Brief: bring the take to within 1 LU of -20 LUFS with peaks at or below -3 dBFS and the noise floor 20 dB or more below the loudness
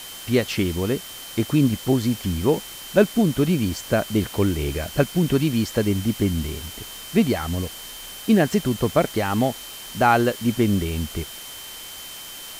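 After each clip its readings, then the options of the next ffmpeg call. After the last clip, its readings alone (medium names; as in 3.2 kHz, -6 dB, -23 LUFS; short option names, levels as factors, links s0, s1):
steady tone 3.1 kHz; tone level -40 dBFS; noise floor -38 dBFS; noise floor target -43 dBFS; loudness -22.5 LUFS; peak level -3.0 dBFS; loudness target -20.0 LUFS
-> -af "bandreject=f=3100:w=30"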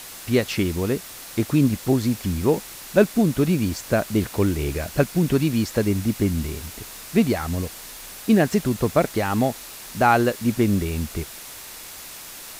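steady tone not found; noise floor -39 dBFS; noise floor target -43 dBFS
-> -af "afftdn=nr=6:nf=-39"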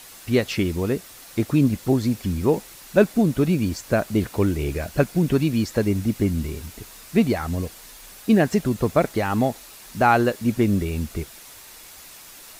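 noise floor -44 dBFS; loudness -22.5 LUFS; peak level -3.5 dBFS; loudness target -20.0 LUFS
-> -af "volume=1.33,alimiter=limit=0.708:level=0:latency=1"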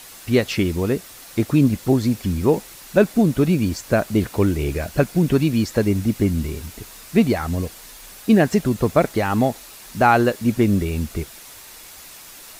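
loudness -20.0 LUFS; peak level -3.0 dBFS; noise floor -42 dBFS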